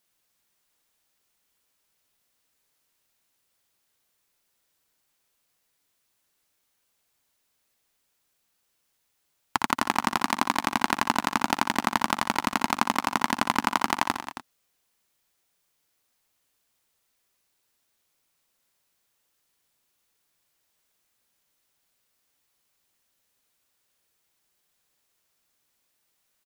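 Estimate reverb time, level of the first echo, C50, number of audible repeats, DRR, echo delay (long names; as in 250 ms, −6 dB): no reverb audible, −8.5 dB, no reverb audible, 3, no reverb audible, 60 ms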